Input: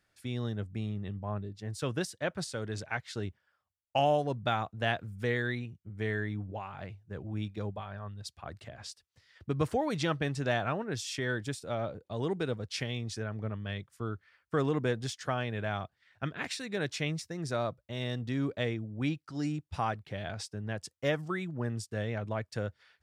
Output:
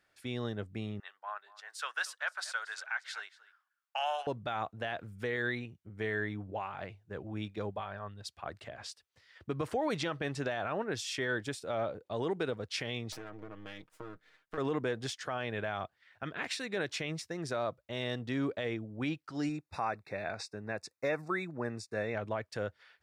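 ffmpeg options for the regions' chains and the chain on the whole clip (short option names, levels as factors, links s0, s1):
-filter_complex "[0:a]asettb=1/sr,asplit=3[s0][s1][s2];[s0]atrim=end=1.004[s3];[s1]atrim=start=1:end=4.27,asetpts=PTS-STARTPTS,afade=t=in:d=0.004:c=qsin,afade=t=out:st=3.266:d=0.004:c=qsin,highpass=f=890:w=0.5412,highpass=f=890:w=1.3066,equalizer=f=1500:t=o:w=0.41:g=8,aecho=1:1:233:0.106,atrim=end_sample=144207[s4];[s2]atrim=start=4.266[s5];[s3][s4]acrossfade=d=0.004:c1=hsin:c2=qsin[s6];[s6][s5]acrossfade=d=0.004:c1=qsin:c2=hsin,asettb=1/sr,asplit=3[s7][s8][s9];[s7]atrim=end=13.124[s10];[s8]atrim=start=13.12:end=14.58,asetpts=PTS-STARTPTS,afade=t=in:d=0.004:c=qsin,afade=t=out:st=1.456:d=0.004:c=qsin,aeval=exprs='max(val(0),0)':c=same,acompressor=threshold=0.0112:ratio=12:attack=3.2:release=140:knee=1:detection=peak,aecho=1:1:6.4:0.73,atrim=end_sample=64386[s11];[s9]atrim=start=14.576[s12];[s10][s11]acrossfade=d=0.004:c1=hsin:c2=qsin[s13];[s13][s12]acrossfade=d=0.004:c1=qsin:c2=hsin,asettb=1/sr,asplit=3[s14][s15][s16];[s14]atrim=end=19.494[s17];[s15]atrim=start=19.49:end=22.15,asetpts=PTS-STARTPTS,afade=t=in:d=0.004:c=qsin,afade=t=out:st=2.656:d=0.004:c=qsin,asuperstop=centerf=3100:order=20:qfactor=3.8,acrossover=split=7900[s18][s19];[s19]acompressor=threshold=0.00112:ratio=4:attack=1:release=60[s20];[s18][s20]amix=inputs=2:normalize=0,lowshelf=f=77:g=-11[s21];[s16]atrim=start=22.146[s22];[s17][s21]acrossfade=d=0.004:c1=hsin:c2=qsin[s23];[s23][s22]acrossfade=d=0.004:c1=qsin:c2=hsin,bass=f=250:g=-9,treble=f=4000:g=-5,alimiter=level_in=1.33:limit=0.0631:level=0:latency=1:release=53,volume=0.75,volume=1.41"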